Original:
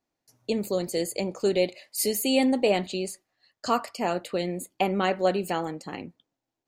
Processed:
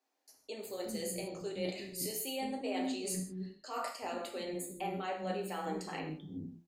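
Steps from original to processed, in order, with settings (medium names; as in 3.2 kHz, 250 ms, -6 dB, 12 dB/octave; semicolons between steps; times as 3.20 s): de-hum 85.57 Hz, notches 23; reverse; compression 12:1, threshold -36 dBFS, peak gain reduction 19 dB; reverse; bands offset in time highs, lows 360 ms, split 300 Hz; gated-style reverb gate 190 ms falling, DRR 0 dB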